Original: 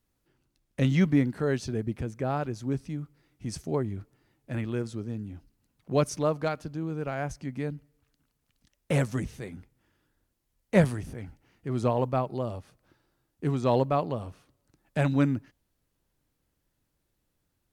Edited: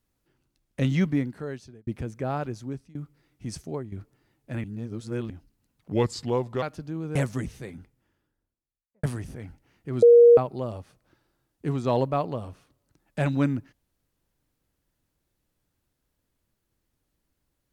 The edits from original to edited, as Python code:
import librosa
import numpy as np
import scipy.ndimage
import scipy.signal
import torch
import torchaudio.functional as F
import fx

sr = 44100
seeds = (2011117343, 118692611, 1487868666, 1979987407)

y = fx.studio_fade_out(x, sr, start_s=9.48, length_s=1.34)
y = fx.edit(y, sr, fx.fade_out_span(start_s=0.94, length_s=0.93),
    fx.fade_out_to(start_s=2.52, length_s=0.43, floor_db=-23.0),
    fx.fade_out_to(start_s=3.53, length_s=0.39, floor_db=-10.5),
    fx.reverse_span(start_s=4.64, length_s=0.66),
    fx.speed_span(start_s=5.92, length_s=0.57, speed=0.81),
    fx.cut(start_s=7.02, length_s=1.92),
    fx.bleep(start_s=11.81, length_s=0.35, hz=474.0, db=-9.5), tone=tone)